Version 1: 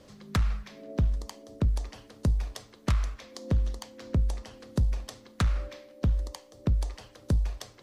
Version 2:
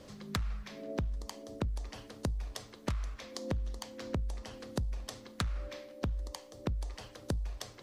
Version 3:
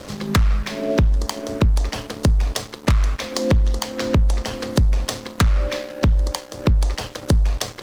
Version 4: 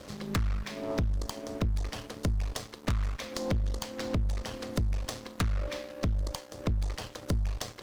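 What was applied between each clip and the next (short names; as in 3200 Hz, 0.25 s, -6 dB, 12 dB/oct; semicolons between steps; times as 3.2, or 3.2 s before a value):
compressor 6:1, threshold -34 dBFS, peak gain reduction 12.5 dB; gain +1.5 dB
sample leveller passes 3; gain +8.5 dB
one diode to ground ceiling -25 dBFS; gain -9 dB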